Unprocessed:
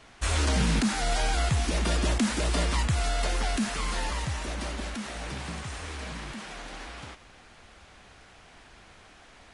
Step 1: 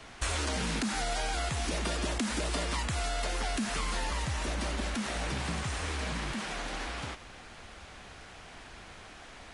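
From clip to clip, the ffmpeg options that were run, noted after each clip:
-filter_complex "[0:a]acrossover=split=250|1100[s0][s1][s2];[s0]alimiter=level_in=1.58:limit=0.0631:level=0:latency=1,volume=0.631[s3];[s3][s1][s2]amix=inputs=3:normalize=0,acompressor=threshold=0.0224:ratio=6,volume=1.58"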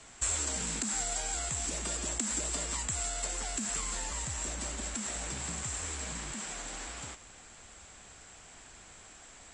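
-af "lowpass=f=7600:t=q:w=16,volume=0.447"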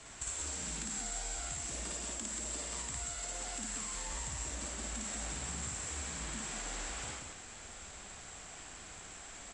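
-filter_complex "[0:a]acompressor=threshold=0.00891:ratio=5,asplit=2[s0][s1];[s1]aecho=0:1:55.39|183.7:0.891|0.631[s2];[s0][s2]amix=inputs=2:normalize=0"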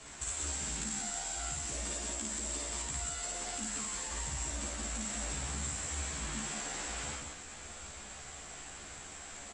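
-filter_complex "[0:a]asplit=2[s0][s1];[s1]adelay=14,volume=0.794[s2];[s0][s2]amix=inputs=2:normalize=0"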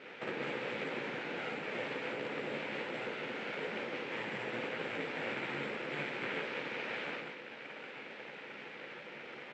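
-af "aeval=exprs='abs(val(0))':c=same,highpass=f=180:w=0.5412,highpass=f=180:w=1.3066,equalizer=f=190:t=q:w=4:g=-5,equalizer=f=290:t=q:w=4:g=-3,equalizer=f=490:t=q:w=4:g=6,equalizer=f=690:t=q:w=4:g=-6,equalizer=f=1100:t=q:w=4:g=-8,equalizer=f=2300:t=q:w=4:g=4,lowpass=f=2700:w=0.5412,lowpass=f=2700:w=1.3066,volume=3.16"

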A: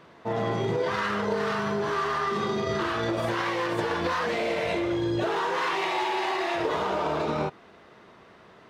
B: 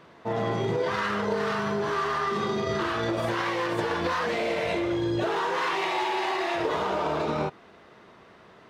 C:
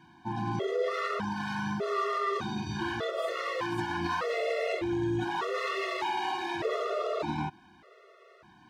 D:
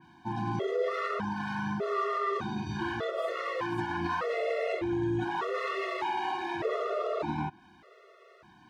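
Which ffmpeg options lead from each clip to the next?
-af anull
-af "afftfilt=real='re*gt(sin(2*PI*0.83*pts/sr)*(1-2*mod(floor(b*sr/1024/360),2)),0)':imag='im*gt(sin(2*PI*0.83*pts/sr)*(1-2*mod(floor(b*sr/1024/360),2)),0)':win_size=1024:overlap=0.75,volume=0.841"
-af "adynamicequalizer=threshold=0.00355:dfrequency=2800:dqfactor=0.7:tfrequency=2800:tqfactor=0.7:attack=5:release=100:ratio=0.375:range=3.5:mode=cutabove:tftype=highshelf"

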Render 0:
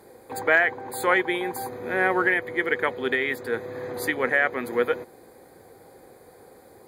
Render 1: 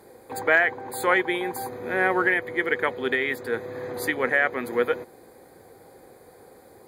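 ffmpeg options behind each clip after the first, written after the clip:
-af anull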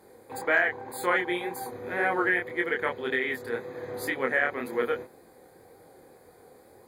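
-af "flanger=delay=22.5:depth=5.8:speed=1.9,volume=0.891"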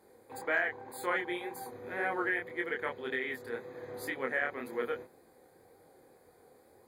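-af "bandreject=f=60:t=h:w=6,bandreject=f=120:t=h:w=6,bandreject=f=180:t=h:w=6,volume=0.447"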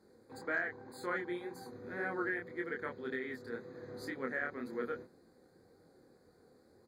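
-af "firequalizer=gain_entry='entry(130,0);entry(180,4);entry(440,-4);entry(830,-10);entry(1400,-2);entry(2900,-17);entry(4200,1);entry(11000,-14)':delay=0.05:min_phase=1"

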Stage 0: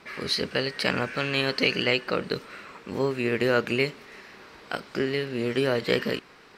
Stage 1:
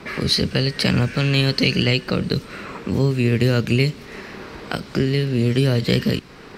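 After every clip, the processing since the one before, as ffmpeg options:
-filter_complex "[0:a]lowshelf=f=420:g=11,acrossover=split=180|3000[s0][s1][s2];[s1]acompressor=threshold=0.0158:ratio=2.5[s3];[s0][s3][s2]amix=inputs=3:normalize=0,volume=2.66"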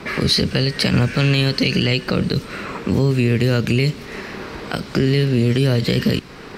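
-af "alimiter=level_in=3.35:limit=0.891:release=50:level=0:latency=1,volume=0.501"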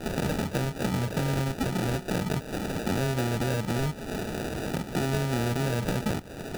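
-filter_complex "[0:a]acrossover=split=87|560|4600[s0][s1][s2][s3];[s0]acompressor=threshold=0.00631:ratio=4[s4];[s1]acompressor=threshold=0.0355:ratio=4[s5];[s2]acompressor=threshold=0.0224:ratio=4[s6];[s3]acompressor=threshold=0.00891:ratio=4[s7];[s4][s5][s6][s7]amix=inputs=4:normalize=0,acrusher=samples=41:mix=1:aa=0.000001"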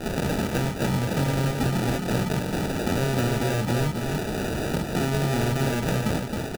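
-filter_complex "[0:a]asplit=2[s0][s1];[s1]aeval=exprs='0.0316*(abs(mod(val(0)/0.0316+3,4)-2)-1)':c=same,volume=0.282[s2];[s0][s2]amix=inputs=2:normalize=0,aecho=1:1:268:0.596,volume=1.26"

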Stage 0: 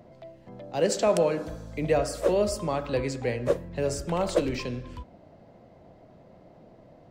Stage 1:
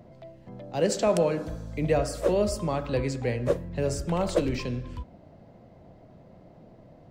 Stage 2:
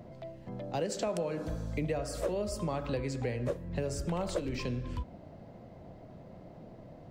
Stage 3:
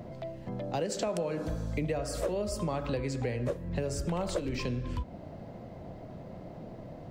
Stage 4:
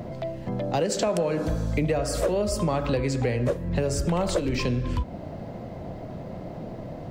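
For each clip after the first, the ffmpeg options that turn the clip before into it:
-af "bass=f=250:g=5,treble=f=4000:g=0,volume=0.891"
-af "acompressor=threshold=0.0251:ratio=6,volume=1.19"
-af "acompressor=threshold=0.00891:ratio=1.5,volume=1.88"
-af "asoftclip=type=tanh:threshold=0.1,volume=2.51"

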